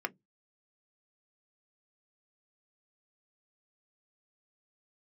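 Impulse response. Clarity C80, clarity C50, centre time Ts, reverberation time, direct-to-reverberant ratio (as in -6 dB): 42.0 dB, 31.5 dB, 3 ms, 0.15 s, 8.0 dB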